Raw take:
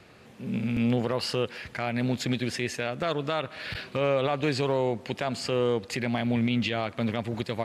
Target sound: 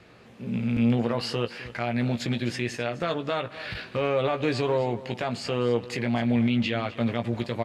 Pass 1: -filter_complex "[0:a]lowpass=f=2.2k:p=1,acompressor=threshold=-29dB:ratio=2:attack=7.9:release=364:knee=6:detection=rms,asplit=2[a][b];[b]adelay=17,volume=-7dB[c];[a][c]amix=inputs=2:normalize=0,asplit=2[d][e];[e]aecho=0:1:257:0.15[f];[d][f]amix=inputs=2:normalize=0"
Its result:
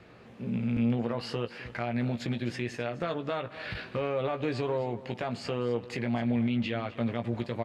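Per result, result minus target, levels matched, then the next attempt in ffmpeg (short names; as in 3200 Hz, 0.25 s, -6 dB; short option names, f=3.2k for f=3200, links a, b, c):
compressor: peak gain reduction +5.5 dB; 4000 Hz band -2.5 dB
-filter_complex "[0:a]lowpass=f=2.2k:p=1,asplit=2[a][b];[b]adelay=17,volume=-7dB[c];[a][c]amix=inputs=2:normalize=0,asplit=2[d][e];[e]aecho=0:1:257:0.15[f];[d][f]amix=inputs=2:normalize=0"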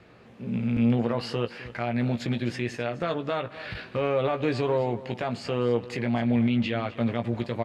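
4000 Hz band -3.5 dB
-filter_complex "[0:a]lowpass=f=5.4k:p=1,asplit=2[a][b];[b]adelay=17,volume=-7dB[c];[a][c]amix=inputs=2:normalize=0,asplit=2[d][e];[e]aecho=0:1:257:0.15[f];[d][f]amix=inputs=2:normalize=0"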